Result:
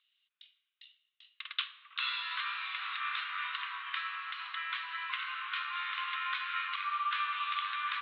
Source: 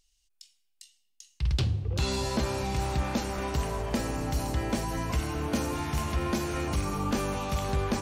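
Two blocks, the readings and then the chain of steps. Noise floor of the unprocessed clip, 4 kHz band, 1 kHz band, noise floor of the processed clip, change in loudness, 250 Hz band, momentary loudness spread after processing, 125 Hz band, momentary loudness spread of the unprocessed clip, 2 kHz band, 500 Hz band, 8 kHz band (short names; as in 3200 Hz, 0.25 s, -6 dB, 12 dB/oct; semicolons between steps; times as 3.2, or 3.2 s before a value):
-72 dBFS, +1.5 dB, -1.5 dB, -82 dBFS, -5.0 dB, under -40 dB, 5 LU, under -40 dB, 2 LU, +4.5 dB, under -40 dB, under -40 dB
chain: Chebyshev band-pass 1100–3800 Hz, order 5; gain +5 dB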